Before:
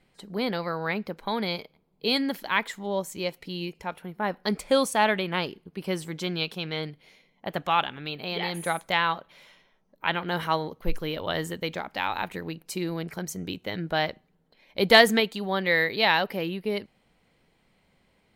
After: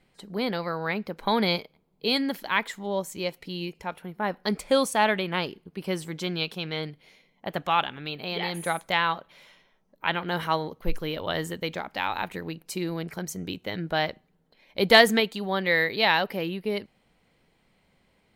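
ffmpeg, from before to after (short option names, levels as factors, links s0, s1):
-filter_complex "[0:a]asettb=1/sr,asplit=3[s0][s1][s2];[s0]atrim=end=1.194[s3];[s1]atrim=start=1.19:end=1.59,asetpts=PTS-STARTPTS,afade=t=in:d=0.004:c=qsin,afade=t=out:st=0.396:d=0.004:c=qsin,acontrast=26[s4];[s2]atrim=start=1.586[s5];[s3][s4]acrossfade=d=0.004:c1=hsin:c2=qsin[s6];[s6][s5]acrossfade=d=0.004:c1=qsin:c2=hsin"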